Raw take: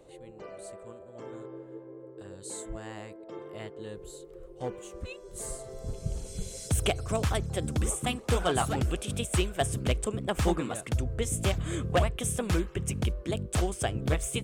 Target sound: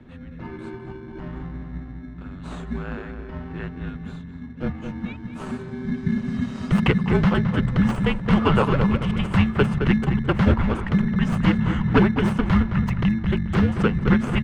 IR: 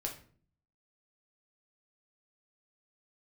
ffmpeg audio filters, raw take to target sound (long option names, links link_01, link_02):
-filter_complex "[0:a]asplit=2[link_01][link_02];[link_02]adelay=216,lowpass=frequency=1800:poles=1,volume=-6dB,asplit=2[link_03][link_04];[link_04]adelay=216,lowpass=frequency=1800:poles=1,volume=0.39,asplit=2[link_05][link_06];[link_06]adelay=216,lowpass=frequency=1800:poles=1,volume=0.39,asplit=2[link_07][link_08];[link_08]adelay=216,lowpass=frequency=1800:poles=1,volume=0.39,asplit=2[link_09][link_10];[link_10]adelay=216,lowpass=frequency=1800:poles=1,volume=0.39[link_11];[link_01][link_03][link_05][link_07][link_09][link_11]amix=inputs=6:normalize=0,afreqshift=-270,acrossover=split=180|5800[link_12][link_13][link_14];[link_14]aeval=exprs='(mod(21.1*val(0)+1,2)-1)/21.1':channel_layout=same[link_15];[link_12][link_13][link_15]amix=inputs=3:normalize=0,bandreject=frequency=2400:width=12,asplit=2[link_16][link_17];[link_17]acrusher=samples=23:mix=1:aa=0.000001,volume=-6dB[link_18];[link_16][link_18]amix=inputs=2:normalize=0,firequalizer=gain_entry='entry(730,0);entry(1300,7);entry(7600,-24)':delay=0.05:min_phase=1,volume=5dB"